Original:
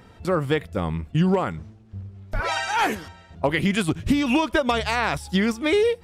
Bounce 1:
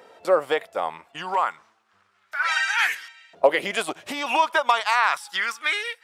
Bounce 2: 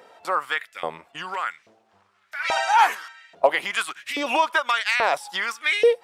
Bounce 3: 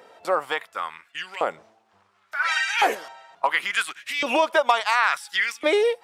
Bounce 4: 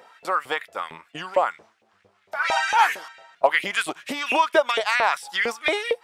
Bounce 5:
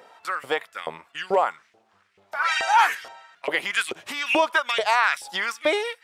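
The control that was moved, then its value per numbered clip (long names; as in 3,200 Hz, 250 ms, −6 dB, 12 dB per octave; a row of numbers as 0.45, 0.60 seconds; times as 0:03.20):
auto-filter high-pass, speed: 0.3, 1.2, 0.71, 4.4, 2.3 Hertz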